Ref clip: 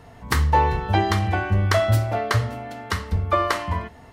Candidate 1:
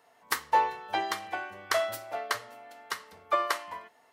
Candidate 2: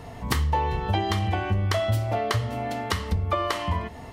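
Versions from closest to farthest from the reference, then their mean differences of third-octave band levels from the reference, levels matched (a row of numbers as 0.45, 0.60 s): 2, 1; 3.5, 6.5 dB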